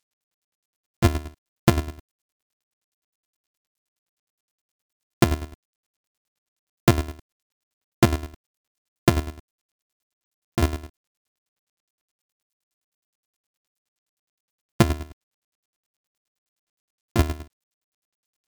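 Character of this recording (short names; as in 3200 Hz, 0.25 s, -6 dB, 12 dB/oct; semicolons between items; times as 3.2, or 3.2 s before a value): a buzz of ramps at a fixed pitch in blocks of 128 samples; chopped level 9.6 Hz, depth 65%, duty 30%; a quantiser's noise floor 12-bit, dither none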